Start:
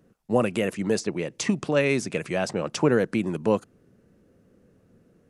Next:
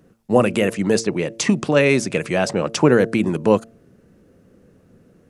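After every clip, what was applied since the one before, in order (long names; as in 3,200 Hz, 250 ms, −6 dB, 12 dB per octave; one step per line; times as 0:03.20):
hum removal 113.2 Hz, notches 6
level +7 dB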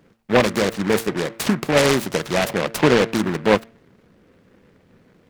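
parametric band 1,000 Hz +4 dB 2.4 octaves
short delay modulated by noise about 1,300 Hz, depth 0.14 ms
level −3 dB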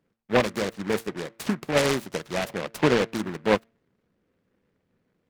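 expander for the loud parts 1.5 to 1, over −38 dBFS
level −4.5 dB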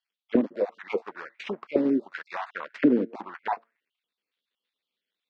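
time-frequency cells dropped at random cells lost 24%
Chebyshev band-pass filter 220–4,900 Hz, order 2
envelope filter 270–3,600 Hz, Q 4, down, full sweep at −20.5 dBFS
level +8 dB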